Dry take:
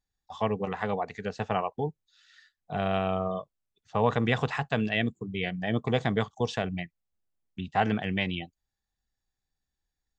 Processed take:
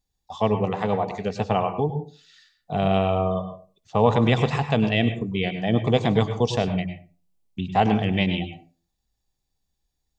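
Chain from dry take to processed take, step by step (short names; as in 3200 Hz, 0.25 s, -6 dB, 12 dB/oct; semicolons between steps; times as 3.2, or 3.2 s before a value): bell 1600 Hz -10 dB 0.8 oct; on a send: reverb RT60 0.35 s, pre-delay 95 ms, DRR 8 dB; on the sum: gain +7 dB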